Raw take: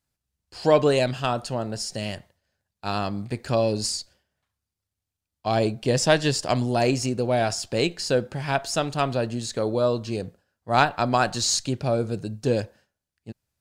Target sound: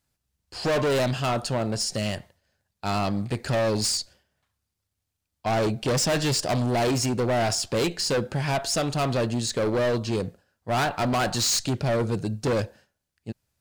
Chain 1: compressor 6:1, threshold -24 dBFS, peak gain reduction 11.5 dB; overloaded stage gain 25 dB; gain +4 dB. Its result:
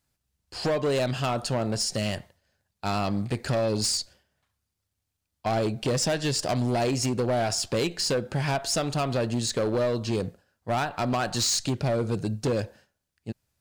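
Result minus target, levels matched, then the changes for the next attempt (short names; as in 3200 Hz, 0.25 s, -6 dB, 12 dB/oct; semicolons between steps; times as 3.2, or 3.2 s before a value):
compressor: peak gain reduction +11.5 dB
remove: compressor 6:1, threshold -24 dBFS, peak gain reduction 11.5 dB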